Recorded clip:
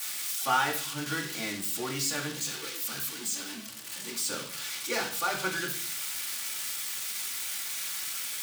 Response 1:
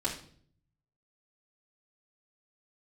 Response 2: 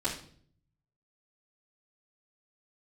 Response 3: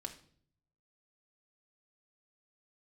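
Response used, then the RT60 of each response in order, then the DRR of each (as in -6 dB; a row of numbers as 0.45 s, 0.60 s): 1; 0.55 s, 0.55 s, 0.55 s; -6.5 dB, -11.0 dB, 2.0 dB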